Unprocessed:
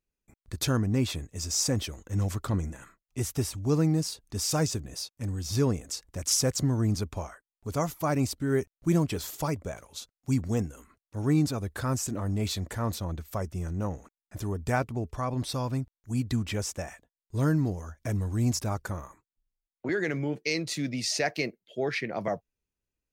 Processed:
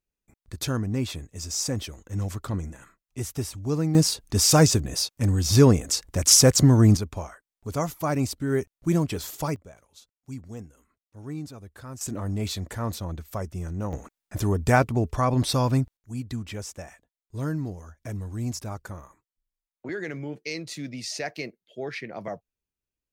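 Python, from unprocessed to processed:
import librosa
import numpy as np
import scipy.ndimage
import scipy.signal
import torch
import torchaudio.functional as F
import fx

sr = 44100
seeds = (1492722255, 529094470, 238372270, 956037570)

y = fx.gain(x, sr, db=fx.steps((0.0, -1.0), (3.95, 10.0), (6.97, 1.5), (9.56, -11.0), (12.01, 0.5), (13.93, 8.0), (15.97, -4.0)))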